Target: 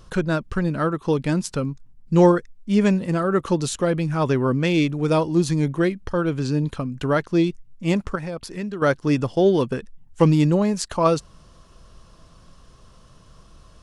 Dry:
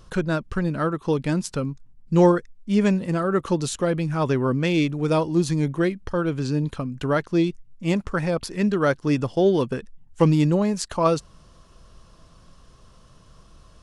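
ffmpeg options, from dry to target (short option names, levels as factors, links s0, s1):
-filter_complex "[0:a]asettb=1/sr,asplit=3[s0][s1][s2];[s0]atrim=end=8.154[s3];[s1]atrim=start=8.15:end=8.82,asetpts=PTS-STARTPTS,afade=t=in:d=0.004:c=qsin,afade=t=out:st=0.666:d=0.004:c=qsin,acompressor=threshold=0.0282:ratio=3[s4];[s2]atrim=start=8.816[s5];[s3][s4]acrossfade=d=0.004:c1=hsin:c2=qsin[s6];[s6][s5]acrossfade=d=0.004:c1=qsin:c2=hsin,volume=1.19"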